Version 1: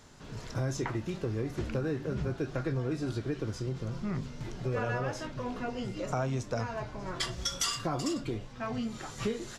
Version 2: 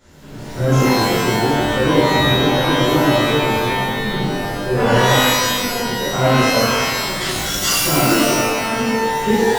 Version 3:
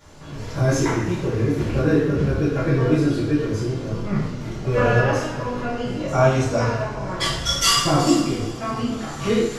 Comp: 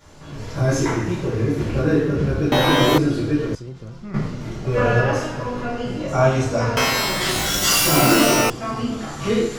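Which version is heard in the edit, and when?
3
2.52–2.98 from 2
3.55–4.14 from 1
6.77–8.5 from 2

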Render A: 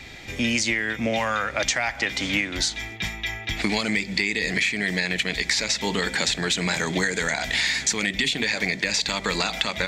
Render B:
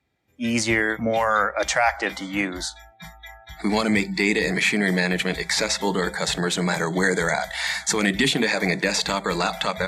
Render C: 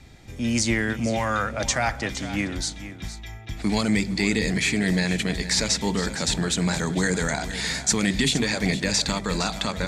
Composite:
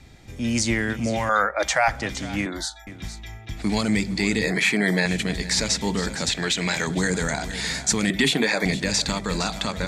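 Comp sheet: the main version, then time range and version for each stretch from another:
C
1.29–1.88 from B
2.46–2.87 from B
4.43–5.06 from B
6.29–6.87 from A
8.1–8.65 from B

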